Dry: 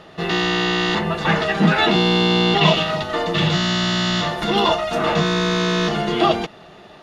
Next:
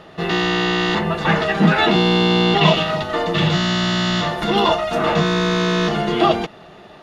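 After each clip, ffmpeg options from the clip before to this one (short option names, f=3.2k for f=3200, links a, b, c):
-af "equalizer=f=5.8k:t=o:w=2.1:g=-3,volume=1.5dB"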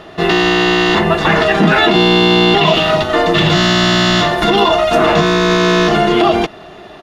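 -filter_complex "[0:a]aecho=1:1:2.9:0.34,asplit=2[a][b];[b]aeval=exprs='sgn(val(0))*max(abs(val(0))-0.0224,0)':c=same,volume=-11dB[c];[a][c]amix=inputs=2:normalize=0,alimiter=level_in=7.5dB:limit=-1dB:release=50:level=0:latency=1,volume=-1dB"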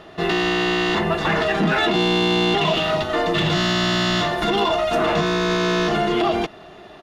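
-af "asoftclip=type=tanh:threshold=-3.5dB,volume=-7dB"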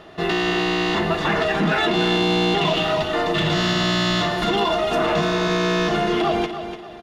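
-af "aecho=1:1:294|588|882|1176:0.316|0.101|0.0324|0.0104,volume=-1dB"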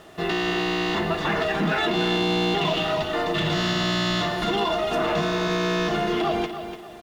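-af "acrusher=bits=7:mix=0:aa=0.5,volume=-3.5dB"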